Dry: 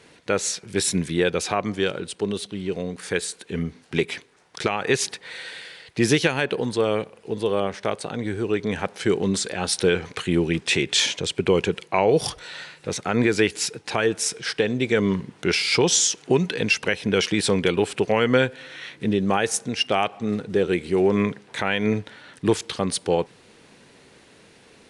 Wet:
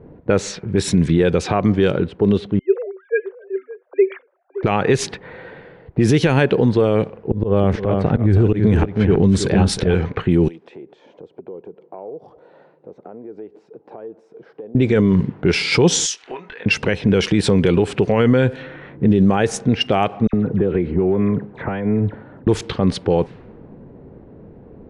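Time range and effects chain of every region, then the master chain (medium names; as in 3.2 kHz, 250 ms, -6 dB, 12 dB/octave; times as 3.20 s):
2.59–4.63 s: formants replaced by sine waves + rippled Chebyshev high-pass 370 Hz, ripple 6 dB + delay 568 ms -15 dB
7.31–9.94 s: bass shelf 130 Hz +11.5 dB + slow attack 154 ms + delay 322 ms -8 dB
10.48–14.75 s: peaking EQ 1.8 kHz -12.5 dB 2.4 oct + compression 4:1, threshold -37 dBFS + high-pass 520 Hz
16.06–16.66 s: Bessel high-pass 2.1 kHz + upward compressor, threshold -33 dBFS + doubling 24 ms -7 dB
20.27–22.47 s: compression, threshold -26 dBFS + phase dispersion lows, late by 63 ms, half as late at 2 kHz
whole clip: level-controlled noise filter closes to 660 Hz, open at -17.5 dBFS; tilt EQ -3 dB/octave; loudness maximiser +12 dB; trim -4.5 dB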